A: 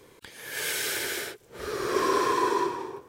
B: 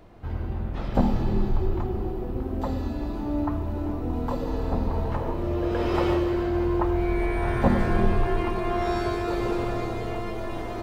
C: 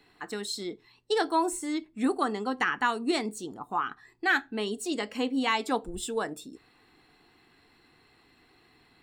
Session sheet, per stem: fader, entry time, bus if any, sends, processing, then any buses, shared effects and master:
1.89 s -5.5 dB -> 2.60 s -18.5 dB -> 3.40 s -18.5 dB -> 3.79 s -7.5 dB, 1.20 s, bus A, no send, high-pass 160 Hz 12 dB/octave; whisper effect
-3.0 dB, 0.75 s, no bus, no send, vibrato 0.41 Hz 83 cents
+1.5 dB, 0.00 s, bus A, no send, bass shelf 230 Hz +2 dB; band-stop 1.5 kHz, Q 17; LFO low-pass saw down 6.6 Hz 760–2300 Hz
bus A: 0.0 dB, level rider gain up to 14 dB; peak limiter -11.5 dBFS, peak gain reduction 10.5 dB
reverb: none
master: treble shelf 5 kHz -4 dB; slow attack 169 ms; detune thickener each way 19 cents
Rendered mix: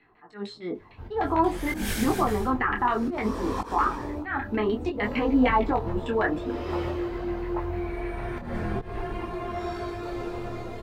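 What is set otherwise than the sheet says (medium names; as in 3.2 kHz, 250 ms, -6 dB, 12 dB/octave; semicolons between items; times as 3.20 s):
stem B: missing vibrato 0.41 Hz 83 cents; master: missing treble shelf 5 kHz -4 dB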